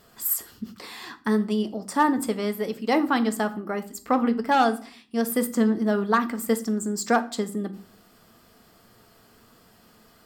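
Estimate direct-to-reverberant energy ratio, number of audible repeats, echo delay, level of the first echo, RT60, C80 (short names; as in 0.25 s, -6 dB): 8.5 dB, none, none, none, 0.50 s, 21.0 dB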